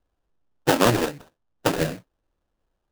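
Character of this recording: aliases and images of a low sample rate 2.2 kHz, jitter 20%

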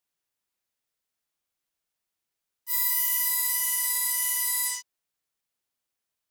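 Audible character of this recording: noise floor -85 dBFS; spectral tilt +4.0 dB/octave

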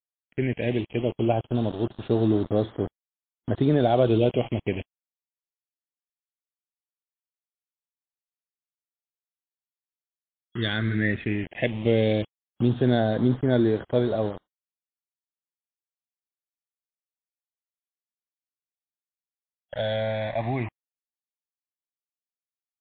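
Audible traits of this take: a quantiser's noise floor 6-bit, dither none; phasing stages 8, 0.091 Hz, lowest notch 320–2500 Hz; MP3

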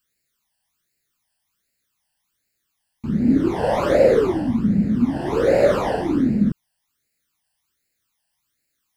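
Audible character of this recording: phasing stages 12, 1.3 Hz, lowest notch 380–1100 Hz

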